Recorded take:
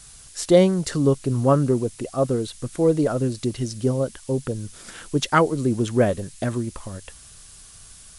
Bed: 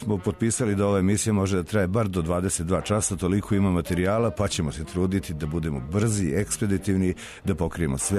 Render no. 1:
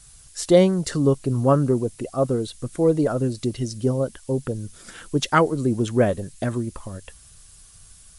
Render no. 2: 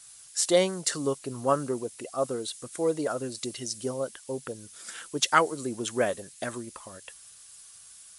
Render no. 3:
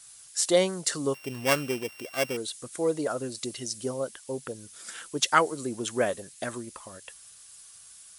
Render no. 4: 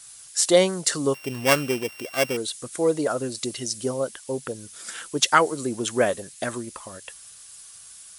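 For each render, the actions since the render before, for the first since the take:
denoiser 6 dB, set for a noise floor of -46 dBFS
HPF 980 Hz 6 dB/oct; dynamic EQ 8200 Hz, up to +5 dB, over -48 dBFS, Q 0.88
1.14–2.37 sample sorter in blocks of 16 samples
gain +5 dB; limiter -3 dBFS, peak gain reduction 3 dB

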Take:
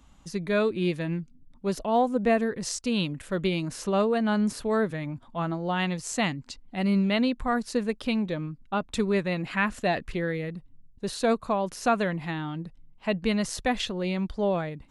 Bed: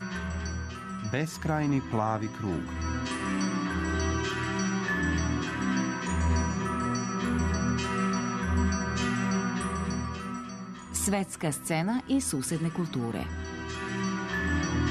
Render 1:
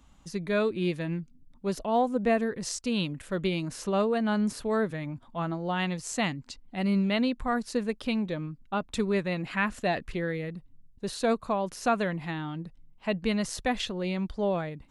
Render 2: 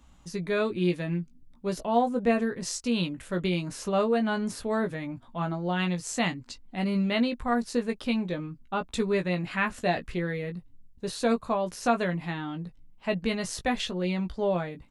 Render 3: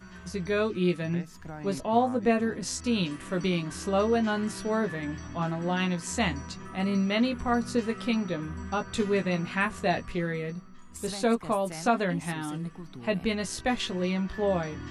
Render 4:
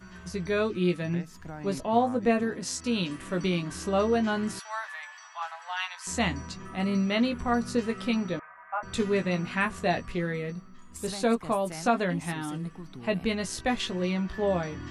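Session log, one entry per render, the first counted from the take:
gain -2 dB
doubler 17 ms -6 dB
add bed -12.5 dB
2.43–3.1 HPF 140 Hz 6 dB/oct; 4.59–6.07 steep high-pass 780 Hz 48 dB/oct; 8.39–8.83 elliptic band-pass 650–2200 Hz

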